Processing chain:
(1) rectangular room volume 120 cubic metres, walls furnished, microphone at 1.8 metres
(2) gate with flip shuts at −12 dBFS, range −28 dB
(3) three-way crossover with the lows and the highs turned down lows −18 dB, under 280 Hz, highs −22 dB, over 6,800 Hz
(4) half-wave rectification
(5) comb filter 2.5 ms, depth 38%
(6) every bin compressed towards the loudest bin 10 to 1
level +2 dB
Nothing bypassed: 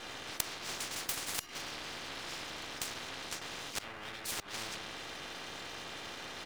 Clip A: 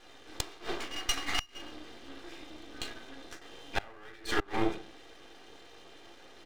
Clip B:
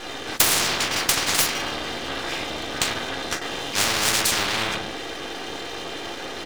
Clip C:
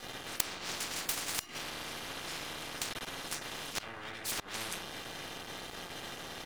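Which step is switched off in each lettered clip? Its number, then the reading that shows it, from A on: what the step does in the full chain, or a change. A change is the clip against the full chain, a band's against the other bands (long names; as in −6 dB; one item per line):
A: 6, 8 kHz band −8.5 dB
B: 2, change in momentary loudness spread +6 LU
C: 3, change in crest factor +3.0 dB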